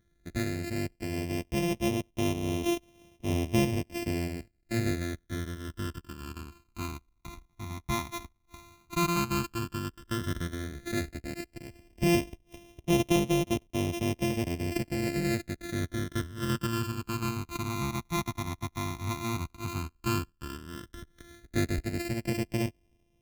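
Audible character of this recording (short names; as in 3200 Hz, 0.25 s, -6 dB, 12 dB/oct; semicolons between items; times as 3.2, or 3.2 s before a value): a buzz of ramps at a fixed pitch in blocks of 128 samples; phasing stages 12, 0.094 Hz, lowest notch 510–1500 Hz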